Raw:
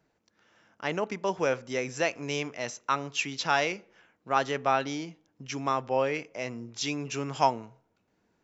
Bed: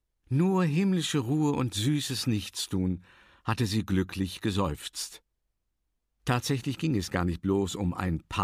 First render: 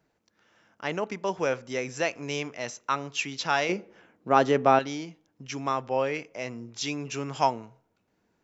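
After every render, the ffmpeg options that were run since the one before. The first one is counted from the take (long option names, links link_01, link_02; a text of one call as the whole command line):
ffmpeg -i in.wav -filter_complex "[0:a]asettb=1/sr,asplit=3[link_01][link_02][link_03];[link_01]atrim=end=3.694[link_04];[link_02]atrim=start=3.69:end=4.79,asetpts=PTS-STARTPTS,afade=type=in:duration=0.004:curve=qsin,afade=type=out:start_time=1.096:duration=0.004:curve=qsin,equalizer=frequency=280:width=0.39:gain=10.5[link_05];[link_03]atrim=start=4.786[link_06];[link_04][link_05]acrossfade=duration=0.004:curve1=hsin:curve2=qsin[link_07];[link_07][link_06]acrossfade=duration=0.004:curve1=qsin:curve2=hsin" out.wav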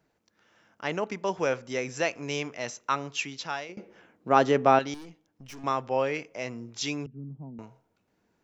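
ffmpeg -i in.wav -filter_complex "[0:a]asettb=1/sr,asplit=3[link_01][link_02][link_03];[link_01]atrim=end=4.944[link_04];[link_02]atrim=start=4.94:end=5.64,asetpts=PTS-STARTPTS,afade=type=in:duration=0.004:curve=qsin,afade=type=out:start_time=0.696:duration=0.004:curve=qsin,aeval=exprs='(tanh(126*val(0)+0.55)-tanh(0.55))/126':channel_layout=same[link_05];[link_03]atrim=start=5.636[link_06];[link_04][link_05]acrossfade=duration=0.004:curve1=hsin:curve2=qsin[link_07];[link_07][link_06]acrossfade=duration=0.004:curve1=qsin:curve2=hsin,asettb=1/sr,asplit=3[link_08][link_09][link_10];[link_08]atrim=end=7.064[link_11];[link_09]atrim=start=7.06:end=7.59,asetpts=PTS-STARTPTS,afade=type=in:duration=0.004:curve=qsin,afade=type=out:start_time=0.526:duration=0.004:curve=qsin,asuperpass=centerf=180:order=4:qfactor=1.6[link_12];[link_10]atrim=start=7.586[link_13];[link_11][link_12]acrossfade=duration=0.004:curve1=hsin:curve2=qsin[link_14];[link_14][link_13]acrossfade=duration=0.004:curve1=qsin:curve2=hsin,asplit=2[link_15][link_16];[link_15]atrim=end=3.77,asetpts=PTS-STARTPTS,afade=type=out:start_time=3.09:duration=0.68:silence=0.0707946[link_17];[link_16]atrim=start=3.77,asetpts=PTS-STARTPTS,afade=type=in:duration=0.004:curve=hsin:silence=0.0707946[link_18];[link_17][link_18]concat=n=2:v=0:a=1" out.wav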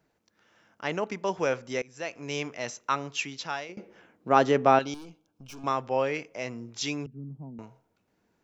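ffmpeg -i in.wav -filter_complex "[0:a]asettb=1/sr,asplit=3[link_01][link_02][link_03];[link_01]atrim=end=4.824[link_04];[link_02]atrim=start=4.82:end=5.67,asetpts=PTS-STARTPTS,afade=type=in:duration=0.004:curve=qsin,afade=type=out:start_time=0.846:duration=0.004:curve=qsin,asuperstop=centerf=1900:order=4:qfactor=3.2[link_05];[link_03]atrim=start=5.666[link_06];[link_04][link_05]acrossfade=duration=0.004:curve1=hsin:curve2=qsin[link_07];[link_07][link_06]acrossfade=duration=0.004:curve1=qsin:curve2=hsin,asplit=2[link_08][link_09];[link_08]atrim=end=1.82,asetpts=PTS-STARTPTS,afade=type=out:start_time=1.816:duration=0.004:curve=hsin:silence=0.0630957[link_10];[link_09]atrim=start=1.82,asetpts=PTS-STARTPTS,afade=type=in:duration=0.6:silence=0.0630957[link_11];[link_10][link_11]concat=n=2:v=0:a=1" out.wav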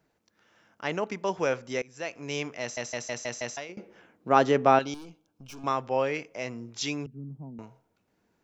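ffmpeg -i in.wav -filter_complex "[0:a]asplit=7[link_01][link_02][link_03][link_04][link_05][link_06][link_07];[link_01]atrim=end=2.772[link_08];[link_02]atrim=start=2.608:end=2.772[link_09];[link_03]atrim=start=2.608:end=2.772[link_10];[link_04]atrim=start=2.608:end=2.772[link_11];[link_05]atrim=start=2.608:end=2.772[link_12];[link_06]atrim=start=2.608:end=2.772[link_13];[link_07]atrim=start=3.568[link_14];[link_08][link_09]acrossfade=duration=0.004:curve1=hsin:curve2=hsin[link_15];[link_15][link_10]acrossfade=duration=0.004:curve1=hsin:curve2=hsin[link_16];[link_16][link_11]acrossfade=duration=0.004:curve1=hsin:curve2=hsin[link_17];[link_17][link_12]acrossfade=duration=0.004:curve1=hsin:curve2=hsin[link_18];[link_18][link_13]acrossfade=duration=0.004:curve1=hsin:curve2=hsin[link_19];[link_19][link_14]acrossfade=duration=0.004:curve1=hsin:curve2=hsin" out.wav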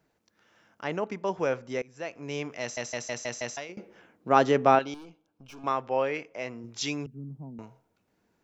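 ffmpeg -i in.wav -filter_complex "[0:a]asettb=1/sr,asplit=3[link_01][link_02][link_03];[link_01]atrim=end=0.844[link_04];[link_02]atrim=start=0.84:end=2.5,asetpts=PTS-STARTPTS,afade=type=in:duration=0.004:curve=qsin,afade=type=out:start_time=1.656:duration=0.004:curve=qsin,highshelf=frequency=2300:gain=-7.5[link_05];[link_03]atrim=start=2.496[link_06];[link_04][link_05]acrossfade=duration=0.004:curve1=hsin:curve2=qsin[link_07];[link_07][link_06]acrossfade=duration=0.004:curve1=qsin:curve2=hsin,asettb=1/sr,asplit=3[link_08][link_09][link_10];[link_08]atrim=end=4.754[link_11];[link_09]atrim=start=4.75:end=6.64,asetpts=PTS-STARTPTS,afade=type=in:duration=0.004:curve=qsin,afade=type=out:start_time=1.886:duration=0.004:curve=qsin,bass=frequency=250:gain=-5,treble=frequency=4000:gain=-8[link_12];[link_10]atrim=start=6.636[link_13];[link_11][link_12]acrossfade=duration=0.004:curve1=hsin:curve2=qsin[link_14];[link_14][link_13]acrossfade=duration=0.004:curve1=qsin:curve2=hsin" out.wav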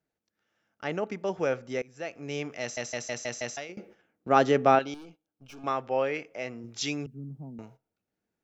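ffmpeg -i in.wav -af "agate=range=-13dB:threshold=-52dB:ratio=16:detection=peak,bandreject=frequency=1000:width=6.2" out.wav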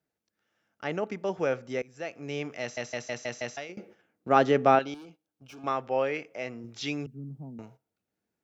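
ffmpeg -i in.wav -filter_complex "[0:a]acrossover=split=4600[link_01][link_02];[link_02]acompressor=threshold=-51dB:ratio=4:attack=1:release=60[link_03];[link_01][link_03]amix=inputs=2:normalize=0,highpass=50" out.wav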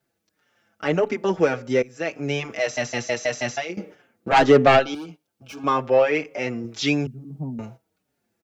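ffmpeg -i in.wav -filter_complex "[0:a]aeval=exprs='0.501*sin(PI/2*2.82*val(0)/0.501)':channel_layout=same,asplit=2[link_01][link_02];[link_02]adelay=5.3,afreqshift=-1.7[link_03];[link_01][link_03]amix=inputs=2:normalize=1" out.wav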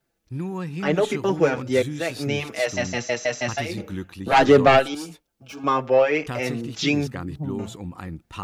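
ffmpeg -i in.wav -i bed.wav -filter_complex "[1:a]volume=-5dB[link_01];[0:a][link_01]amix=inputs=2:normalize=0" out.wav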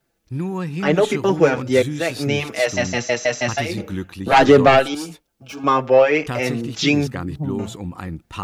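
ffmpeg -i in.wav -af "volume=4.5dB,alimiter=limit=-2dB:level=0:latency=1" out.wav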